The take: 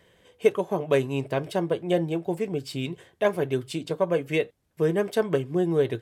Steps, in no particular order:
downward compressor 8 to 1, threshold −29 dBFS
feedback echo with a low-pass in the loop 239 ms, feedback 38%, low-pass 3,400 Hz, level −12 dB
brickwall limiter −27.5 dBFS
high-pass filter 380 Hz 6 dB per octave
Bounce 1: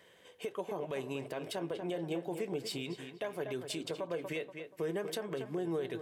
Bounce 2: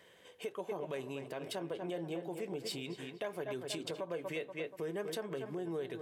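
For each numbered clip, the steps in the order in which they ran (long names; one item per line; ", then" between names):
high-pass filter, then downward compressor, then feedback echo with a low-pass in the loop, then brickwall limiter
feedback echo with a low-pass in the loop, then downward compressor, then brickwall limiter, then high-pass filter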